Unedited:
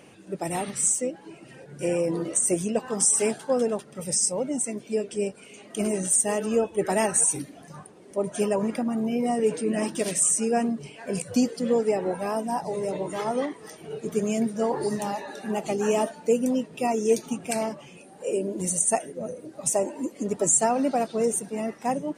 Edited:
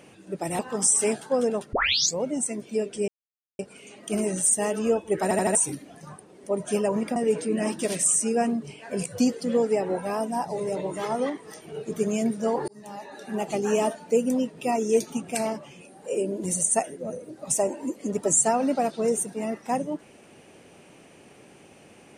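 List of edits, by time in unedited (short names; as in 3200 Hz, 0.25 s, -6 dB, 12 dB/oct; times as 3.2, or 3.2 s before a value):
0.59–2.77 cut
3.91 tape start 0.44 s
5.26 insert silence 0.51 s
6.9 stutter in place 0.08 s, 4 plays
8.83–9.32 cut
14.84–15.6 fade in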